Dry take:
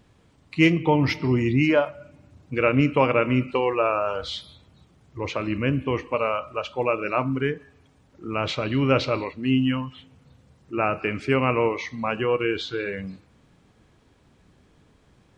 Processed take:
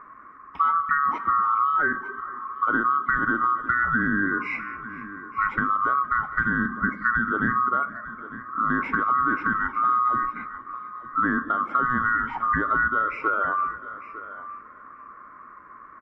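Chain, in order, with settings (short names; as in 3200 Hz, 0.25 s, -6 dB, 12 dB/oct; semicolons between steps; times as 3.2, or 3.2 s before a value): band-swap scrambler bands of 1000 Hz; in parallel at +2.5 dB: limiter -15 dBFS, peak gain reduction 10.5 dB; on the sum: EQ curve 150 Hz 0 dB, 270 Hz +10 dB, 750 Hz -1 dB, 1200 Hz +6 dB, 2300 Hz +1 dB, 3400 Hz -28 dB; compressor 5:1, threshold -21 dBFS, peak gain reduction 14.5 dB; echo 0.866 s -15 dB; spectral repair 6.5–6.75, 2300–5600 Hz both; on a send: feedback echo 0.444 s, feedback 55%, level -21 dB; on the sum: speed mistake 25 fps video run at 24 fps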